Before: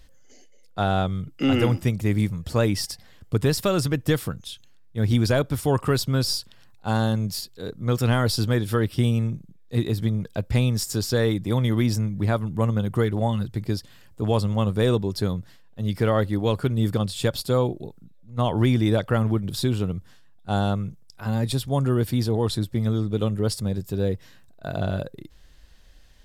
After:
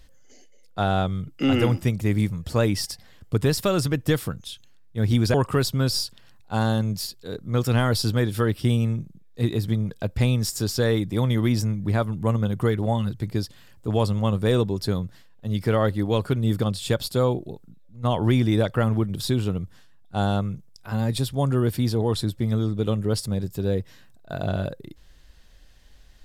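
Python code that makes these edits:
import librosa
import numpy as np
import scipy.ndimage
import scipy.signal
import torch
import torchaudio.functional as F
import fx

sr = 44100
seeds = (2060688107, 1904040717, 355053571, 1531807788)

y = fx.edit(x, sr, fx.cut(start_s=5.34, length_s=0.34), tone=tone)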